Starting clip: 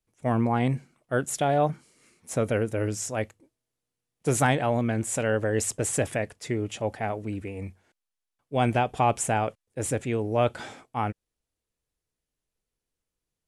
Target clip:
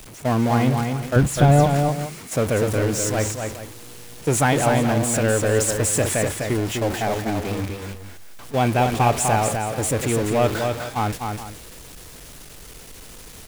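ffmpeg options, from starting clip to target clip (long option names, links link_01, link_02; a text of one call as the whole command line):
ffmpeg -i in.wav -filter_complex "[0:a]aeval=exprs='val(0)+0.5*0.0501*sgn(val(0))':channel_layout=same,agate=range=-11dB:threshold=-29dB:ratio=16:detection=peak,asettb=1/sr,asplit=3[link_01][link_02][link_03];[link_01]atrim=end=1.164[link_04];[link_02]atrim=start=1.16:end=1.64,asetpts=PTS-STARTPTS,afade=type=in:duration=0.004:curve=qsin,afade=type=out:start_time=0.476:duration=0.004:curve=qsin,bass=frequency=250:gain=13,treble=frequency=4000:gain=-5[link_05];[link_03]atrim=start=1.636[link_06];[link_04][link_05]acrossfade=duration=0.004:curve1=hsin:curve2=qsin[link_07];[link_07][link_06]acrossfade=duration=0.004:curve1=qsin:curve2=hsin,aecho=1:1:250|421:0.562|0.2,volume=2dB" out.wav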